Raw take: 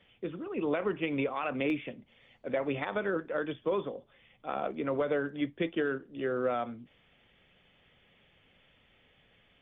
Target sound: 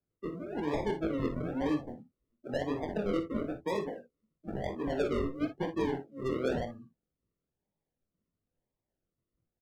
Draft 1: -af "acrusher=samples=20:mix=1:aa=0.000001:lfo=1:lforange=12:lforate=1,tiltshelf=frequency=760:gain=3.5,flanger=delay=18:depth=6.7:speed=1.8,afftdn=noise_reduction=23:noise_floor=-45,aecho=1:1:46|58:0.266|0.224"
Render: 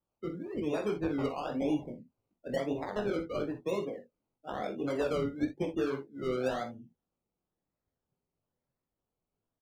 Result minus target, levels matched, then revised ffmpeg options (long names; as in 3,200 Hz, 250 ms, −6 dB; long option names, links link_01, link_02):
sample-and-hold swept by an LFO: distortion −11 dB
-af "acrusher=samples=43:mix=1:aa=0.000001:lfo=1:lforange=25.8:lforate=1,tiltshelf=frequency=760:gain=3.5,flanger=delay=18:depth=6.7:speed=1.8,afftdn=noise_reduction=23:noise_floor=-45,aecho=1:1:46|58:0.266|0.224"